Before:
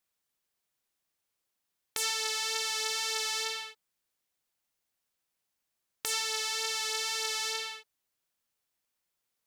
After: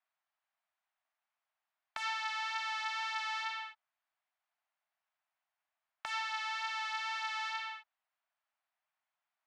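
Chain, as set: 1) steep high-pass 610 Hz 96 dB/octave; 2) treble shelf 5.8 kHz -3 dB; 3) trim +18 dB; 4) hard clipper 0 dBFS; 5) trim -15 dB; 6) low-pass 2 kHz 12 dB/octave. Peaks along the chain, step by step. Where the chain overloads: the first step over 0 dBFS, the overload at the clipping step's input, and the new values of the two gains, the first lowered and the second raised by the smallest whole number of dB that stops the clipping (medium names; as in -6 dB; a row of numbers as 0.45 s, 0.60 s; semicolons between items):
-12.0 dBFS, -13.5 dBFS, +4.5 dBFS, 0.0 dBFS, -15.0 dBFS, -23.0 dBFS; step 3, 4.5 dB; step 3 +13 dB, step 5 -10 dB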